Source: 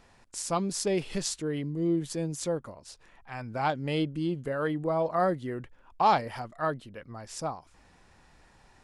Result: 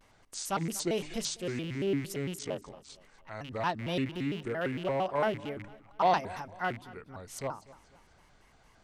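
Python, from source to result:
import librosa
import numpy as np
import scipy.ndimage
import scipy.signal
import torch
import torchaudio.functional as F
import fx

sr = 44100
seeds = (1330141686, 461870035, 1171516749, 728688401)

p1 = fx.rattle_buzz(x, sr, strikes_db=-38.0, level_db=-31.0)
p2 = fx.hum_notches(p1, sr, base_hz=60, count=6)
p3 = fx.ring_mod(p2, sr, carrier_hz=fx.line((2.35, 26.0), (2.88, 86.0)), at=(2.35, 2.88), fade=0.02)
p4 = p3 + fx.echo_feedback(p3, sr, ms=242, feedback_pct=41, wet_db=-19.5, dry=0)
p5 = fx.vibrato_shape(p4, sr, shape='square', rate_hz=4.4, depth_cents=250.0)
y = F.gain(torch.from_numpy(p5), -3.0).numpy()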